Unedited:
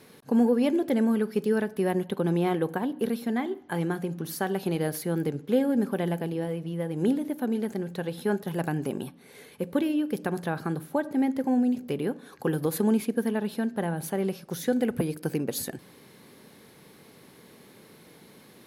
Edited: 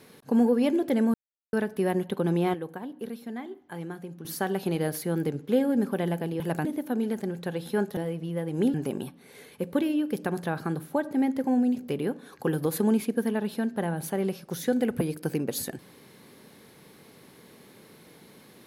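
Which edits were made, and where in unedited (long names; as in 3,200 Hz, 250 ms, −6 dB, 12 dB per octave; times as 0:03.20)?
0:01.14–0:01.53: silence
0:02.54–0:04.25: clip gain −8.5 dB
0:06.40–0:07.17: swap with 0:08.49–0:08.74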